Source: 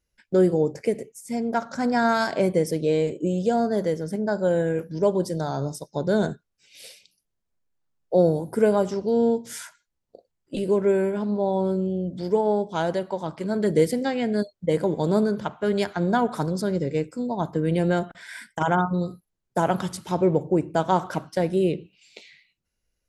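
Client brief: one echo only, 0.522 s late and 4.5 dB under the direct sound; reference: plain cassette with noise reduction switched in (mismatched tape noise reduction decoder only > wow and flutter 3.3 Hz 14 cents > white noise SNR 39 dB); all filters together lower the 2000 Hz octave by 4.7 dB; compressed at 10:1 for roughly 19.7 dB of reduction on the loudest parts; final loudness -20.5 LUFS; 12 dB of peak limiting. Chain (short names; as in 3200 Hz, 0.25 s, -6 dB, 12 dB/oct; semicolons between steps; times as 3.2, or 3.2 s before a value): bell 2000 Hz -7 dB; compressor 10:1, threshold -35 dBFS; limiter -32 dBFS; echo 0.522 s -4.5 dB; mismatched tape noise reduction decoder only; wow and flutter 3.3 Hz 14 cents; white noise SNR 39 dB; gain +20.5 dB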